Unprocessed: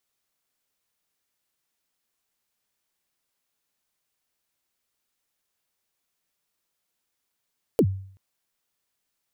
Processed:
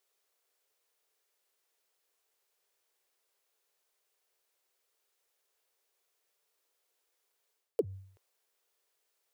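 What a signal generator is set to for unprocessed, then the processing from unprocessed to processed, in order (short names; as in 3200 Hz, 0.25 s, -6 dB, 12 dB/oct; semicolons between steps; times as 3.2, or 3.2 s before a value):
kick drum length 0.38 s, from 530 Hz, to 96 Hz, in 65 ms, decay 0.56 s, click on, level -12.5 dB
reverse; compressor 6:1, threshold -31 dBFS; reverse; resonant low shelf 310 Hz -10.5 dB, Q 3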